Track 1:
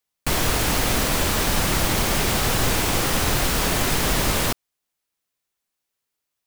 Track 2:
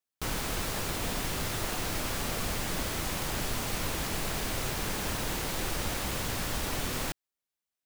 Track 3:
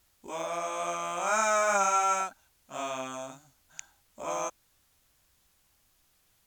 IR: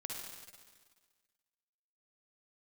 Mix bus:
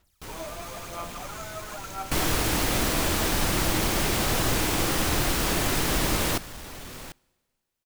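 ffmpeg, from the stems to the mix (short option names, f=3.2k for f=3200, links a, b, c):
-filter_complex "[0:a]equalizer=f=320:t=o:w=0.23:g=6,adelay=1850,volume=-4dB[a];[1:a]asoftclip=type=tanh:threshold=-27.5dB,volume=-6dB,asplit=2[b][c];[c]volume=-23.5dB[d];[2:a]alimiter=level_in=6dB:limit=-24dB:level=0:latency=1,volume=-6dB,aphaser=in_gain=1:out_gain=1:delay=3.3:decay=0.73:speed=1:type=sinusoidal,volume=-5dB[e];[3:a]atrim=start_sample=2205[f];[d][f]afir=irnorm=-1:irlink=0[g];[a][b][e][g]amix=inputs=4:normalize=0"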